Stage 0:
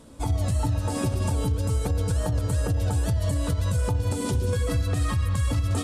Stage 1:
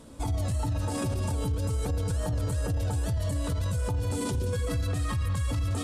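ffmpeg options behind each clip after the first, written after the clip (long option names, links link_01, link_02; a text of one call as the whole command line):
ffmpeg -i in.wav -af "alimiter=limit=-22.5dB:level=0:latency=1:release=12" out.wav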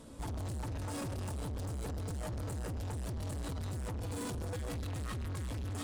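ffmpeg -i in.wav -af "asoftclip=type=hard:threshold=-34dB,volume=-3dB" out.wav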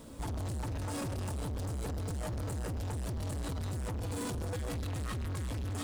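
ffmpeg -i in.wav -af "acrusher=bits=10:mix=0:aa=0.000001,volume=2.5dB" out.wav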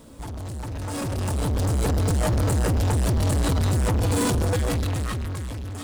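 ffmpeg -i in.wav -af "dynaudnorm=framelen=230:gausssize=11:maxgain=12.5dB,volume=2.5dB" out.wav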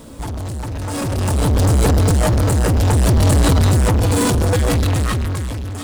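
ffmpeg -i in.wav -af "tremolo=f=0.59:d=0.28,volume=9dB" out.wav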